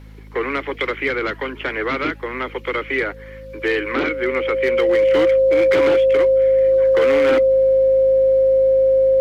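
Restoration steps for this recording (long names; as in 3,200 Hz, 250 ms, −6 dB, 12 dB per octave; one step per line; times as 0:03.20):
clipped peaks rebuilt −10.5 dBFS
hum removal 52.8 Hz, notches 5
notch filter 530 Hz, Q 30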